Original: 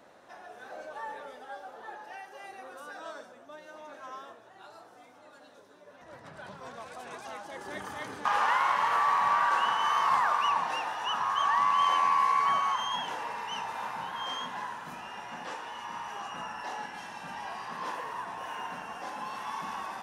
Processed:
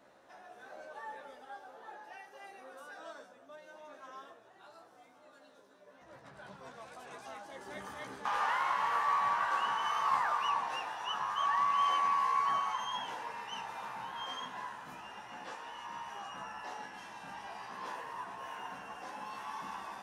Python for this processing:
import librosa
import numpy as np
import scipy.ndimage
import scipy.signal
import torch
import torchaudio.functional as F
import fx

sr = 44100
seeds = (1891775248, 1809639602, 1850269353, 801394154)

y = fx.doubler(x, sr, ms=15.0, db=-4.5)
y = y * librosa.db_to_amplitude(-7.0)